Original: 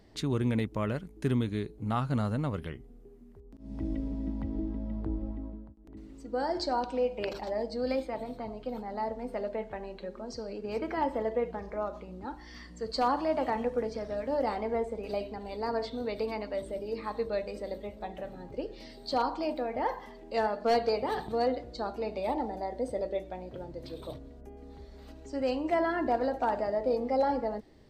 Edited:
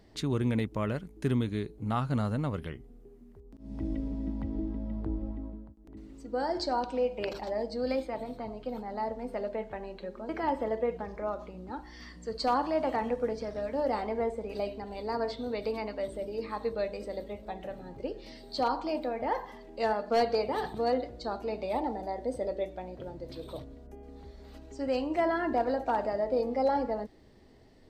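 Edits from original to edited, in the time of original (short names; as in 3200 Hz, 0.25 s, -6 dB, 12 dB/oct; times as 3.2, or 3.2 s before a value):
10.29–10.83 cut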